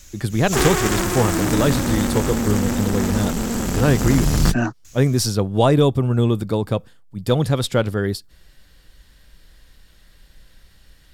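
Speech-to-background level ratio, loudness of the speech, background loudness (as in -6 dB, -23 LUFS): 0.5 dB, -21.0 LUFS, -21.5 LUFS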